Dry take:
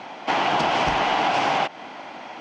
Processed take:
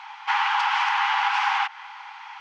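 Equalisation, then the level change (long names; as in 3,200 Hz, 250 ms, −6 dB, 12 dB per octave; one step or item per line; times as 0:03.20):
dynamic equaliser 1,600 Hz, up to +4 dB, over −40 dBFS, Q 1.4
linear-phase brick-wall high-pass 780 Hz
high-shelf EQ 5,900 Hz −10 dB
0.0 dB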